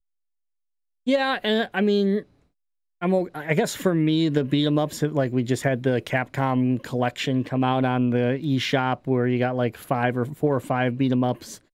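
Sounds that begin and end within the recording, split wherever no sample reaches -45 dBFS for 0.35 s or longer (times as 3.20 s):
1.07–2.23 s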